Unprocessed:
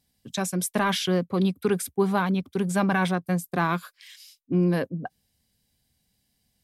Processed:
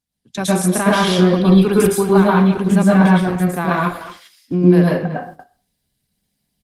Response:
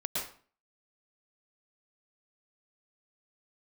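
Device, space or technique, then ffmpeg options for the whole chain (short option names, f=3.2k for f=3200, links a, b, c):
speakerphone in a meeting room: -filter_complex "[0:a]asettb=1/sr,asplit=3[a][b][c];[a]atrim=end=2.574[d];[b]atrim=start=2.57:end=3.12,asetpts=PTS-STARTPTS,afade=t=in:d=0.004:c=qsin,afade=t=out:st=0.546:d=0.004:c=qsin,adynamicequalizer=threshold=0.0141:dfrequency=120:dqfactor=0.88:tfrequency=120:tqfactor=0.88:attack=5:release=100:ratio=0.375:range=2:mode=boostabove:tftype=bell[e];[c]atrim=start=3.116[f];[d][e]acrossfade=d=0.004:c1=hsin:c2=qsin[g];[g][f]acrossfade=d=0.004:c1=qsin:c2=hsin[h];[1:a]atrim=start_sample=2205[i];[h][i]afir=irnorm=-1:irlink=0,asplit=2[j][k];[k]adelay=230,highpass=300,lowpass=3.4k,asoftclip=type=hard:threshold=-14.5dB,volume=-13dB[l];[j][l]amix=inputs=2:normalize=0,dynaudnorm=f=230:g=3:m=9dB,agate=range=-11dB:threshold=-35dB:ratio=16:detection=peak" -ar 48000 -c:a libopus -b:a 20k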